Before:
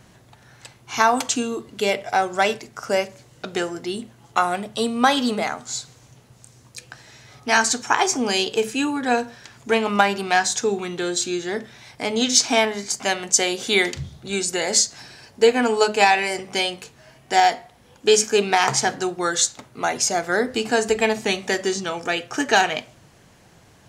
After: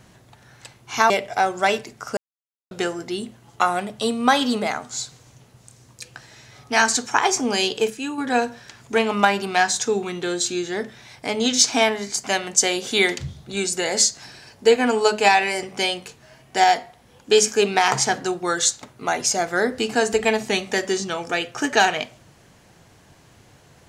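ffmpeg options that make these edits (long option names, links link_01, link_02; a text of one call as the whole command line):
ffmpeg -i in.wav -filter_complex "[0:a]asplit=6[link_01][link_02][link_03][link_04][link_05][link_06];[link_01]atrim=end=1.102[link_07];[link_02]atrim=start=1.858:end=2.93,asetpts=PTS-STARTPTS,afade=type=out:start_time=1.068:duration=0.004:curve=hsin[link_08];[link_03]atrim=start=2.93:end=3.47,asetpts=PTS-STARTPTS,volume=0[link_09];[link_04]atrim=start=3.47:end=8.662,asetpts=PTS-STARTPTS,afade=type=in:duration=0.004:curve=hsin[link_10];[link_05]atrim=start=8.658:end=8.942,asetpts=PTS-STARTPTS,volume=-6dB[link_11];[link_06]atrim=start=8.938[link_12];[link_08][link_09][link_10]concat=n=3:v=0:a=1[link_13];[link_07][link_13]acrossfade=duration=0.004:curve1=hsin:curve2=hsin[link_14];[link_14][link_11]acrossfade=duration=0.004:curve1=hsin:curve2=hsin[link_15];[link_15][link_12]acrossfade=duration=0.004:curve1=hsin:curve2=hsin" out.wav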